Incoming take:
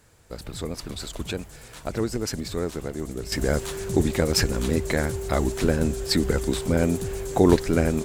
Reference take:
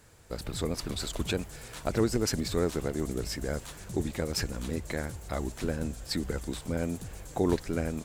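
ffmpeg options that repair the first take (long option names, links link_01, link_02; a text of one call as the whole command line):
ffmpeg -i in.wav -af "bandreject=frequency=390:width=30,asetnsamples=nb_out_samples=441:pad=0,asendcmd='3.32 volume volume -9.5dB',volume=0dB" out.wav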